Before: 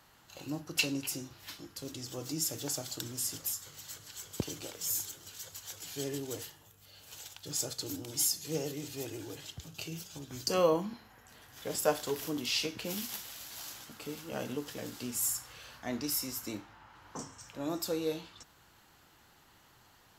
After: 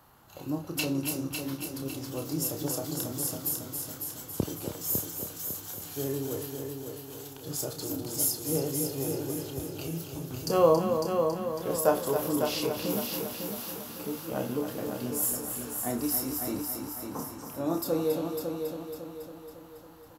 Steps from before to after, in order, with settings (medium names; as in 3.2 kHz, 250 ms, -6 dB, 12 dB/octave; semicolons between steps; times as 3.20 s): high-order bell 3.7 kHz -9 dB 2.6 oct; doubling 30 ms -7 dB; multi-head delay 276 ms, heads first and second, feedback 52%, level -8 dB; trim +5 dB